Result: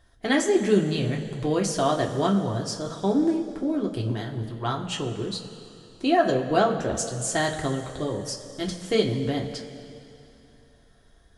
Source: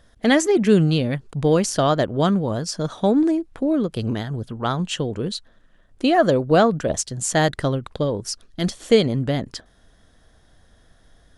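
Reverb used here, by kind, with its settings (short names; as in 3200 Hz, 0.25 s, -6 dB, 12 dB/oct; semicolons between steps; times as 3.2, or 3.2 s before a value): two-slope reverb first 0.2 s, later 2.9 s, from -18 dB, DRR -1 dB; gain -7.5 dB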